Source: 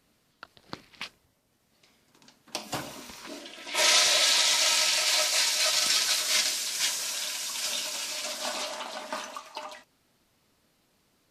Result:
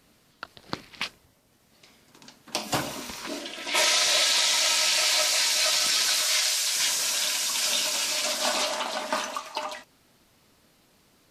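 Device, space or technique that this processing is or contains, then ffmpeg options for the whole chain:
de-esser from a sidechain: -filter_complex "[0:a]asplit=2[link_01][link_02];[link_02]highpass=5900,apad=whole_len=498721[link_03];[link_01][link_03]sidechaincompress=threshold=-32dB:ratio=10:attack=2.8:release=33,asettb=1/sr,asplit=3[link_04][link_05][link_06];[link_04]atrim=end=6.214[link_07];[link_05]atrim=start=6.21:end=6.76,asetpts=PTS-STARTPTS,afade=type=in:duration=0.004:curve=qsin,afade=type=out:start_time=0.546:duration=0.004:curve=qsin,highpass=frequency=500:width=0.5412,highpass=frequency=500:width=1.3066[link_08];[link_06]atrim=start=6.756[link_09];[link_07][link_08]acrossfade=duration=0.004:curve1=hsin:curve2=qsin[link_10];[link_10][link_09]acrossfade=duration=0.004:curve1=qsin:curve2=hsin,volume=7dB"

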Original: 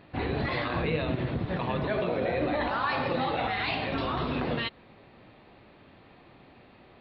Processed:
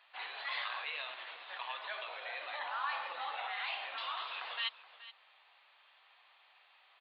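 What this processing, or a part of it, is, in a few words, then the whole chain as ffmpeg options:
musical greeting card: -filter_complex "[0:a]asettb=1/sr,asplit=3[link_01][link_02][link_03];[link_01]atrim=end=2.594[link_04];[link_02]atrim=start=2.59:end=3.97,asetpts=PTS-STARTPTS,afade=type=in:duration=0.004:curve=qsin,afade=type=out:start_time=1.376:duration=0.004:curve=qsin,aemphasis=mode=reproduction:type=riaa[link_05];[link_03]atrim=start=3.966[link_06];[link_04][link_05]acrossfade=duration=0.004:curve1=hsin:curve2=qsin[link_07];[link_07][link_06]acrossfade=duration=0.004:curve1=qsin:curve2=hsin,aresample=11025,aresample=44100,highpass=frequency=880:width=0.5412,highpass=frequency=880:width=1.3066,equalizer=frequency=3200:width_type=o:width=0.55:gain=7,aecho=1:1:424:0.158,volume=-6.5dB"

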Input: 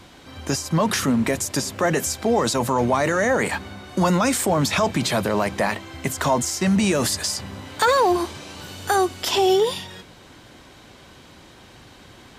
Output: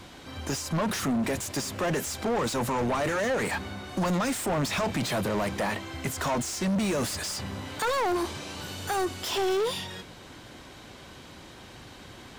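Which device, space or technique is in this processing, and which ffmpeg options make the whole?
saturation between pre-emphasis and de-emphasis: -af "highshelf=frequency=4300:gain=11.5,asoftclip=type=tanh:threshold=-23.5dB,highshelf=frequency=4300:gain=-11.5"

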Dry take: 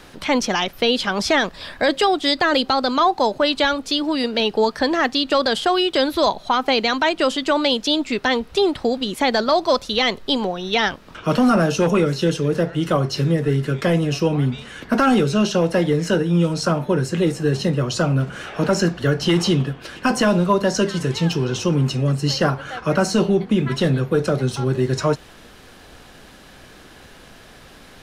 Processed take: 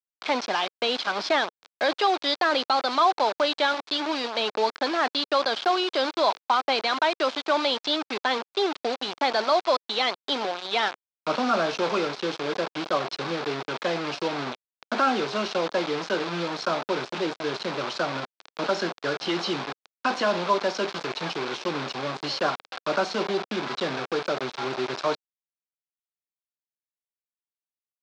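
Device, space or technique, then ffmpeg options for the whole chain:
hand-held game console: -af "acrusher=bits=3:mix=0:aa=0.000001,highpass=450,equalizer=frequency=480:width_type=q:width=4:gain=-4,equalizer=frequency=1900:width_type=q:width=4:gain=-6,equalizer=frequency=2900:width_type=q:width=4:gain=-5,lowpass=frequency=4500:width=0.5412,lowpass=frequency=4500:width=1.3066,volume=-2.5dB"

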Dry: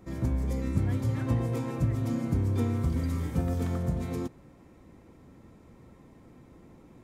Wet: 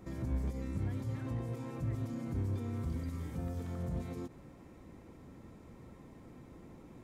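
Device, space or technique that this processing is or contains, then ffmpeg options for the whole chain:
de-esser from a sidechain: -filter_complex "[0:a]asplit=2[link_01][link_02];[link_02]highpass=frequency=6400:poles=1,apad=whole_len=310285[link_03];[link_01][link_03]sidechaincompress=threshold=-59dB:ratio=8:attack=0.91:release=56"

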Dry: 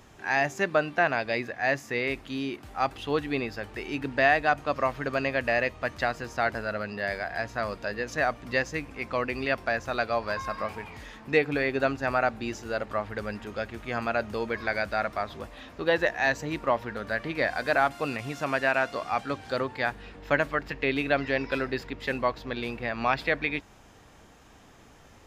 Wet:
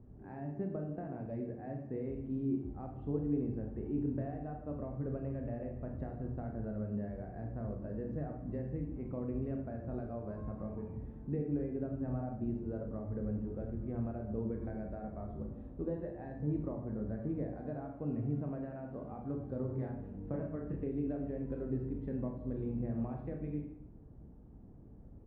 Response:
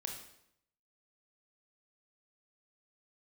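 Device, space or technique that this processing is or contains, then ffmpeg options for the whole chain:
television next door: -filter_complex "[0:a]acompressor=threshold=-28dB:ratio=4,lowpass=260[link_01];[1:a]atrim=start_sample=2205[link_02];[link_01][link_02]afir=irnorm=-1:irlink=0,asplit=3[link_03][link_04][link_05];[link_03]afade=type=out:start_time=19.68:duration=0.02[link_06];[link_04]asplit=2[link_07][link_08];[link_08]adelay=30,volume=-3dB[link_09];[link_07][link_09]amix=inputs=2:normalize=0,afade=type=in:start_time=19.68:duration=0.02,afade=type=out:start_time=20.85:duration=0.02[link_10];[link_05]afade=type=in:start_time=20.85:duration=0.02[link_11];[link_06][link_10][link_11]amix=inputs=3:normalize=0,volume=4.5dB"

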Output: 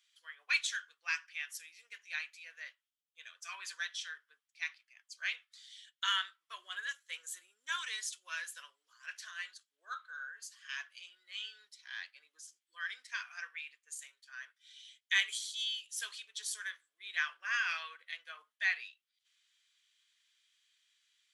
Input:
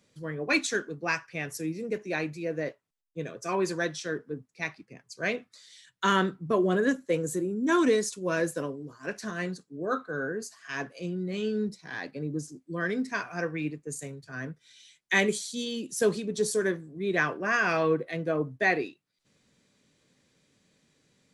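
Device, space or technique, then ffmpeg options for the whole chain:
headphones lying on a table: -af "highpass=frequency=1400:width=0.5412,highpass=frequency=1400:width=1.3066,equalizer=frequency=3200:width_type=o:width=0.38:gain=11,volume=-6dB"

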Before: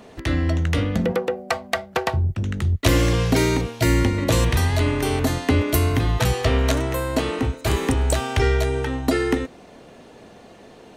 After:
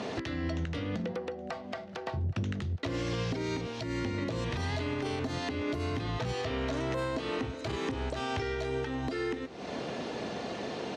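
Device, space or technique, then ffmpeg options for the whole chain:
broadcast voice chain: -af "highpass=110,deesser=0.65,acompressor=threshold=-37dB:ratio=4,equalizer=frequency=5200:width_type=o:width=1.1:gain=5.5,alimiter=level_in=8dB:limit=-24dB:level=0:latency=1:release=296,volume=-8dB,lowpass=5000,aecho=1:1:821|1642|2463|3284:0.0944|0.0463|0.0227|0.0111,volume=8.5dB"

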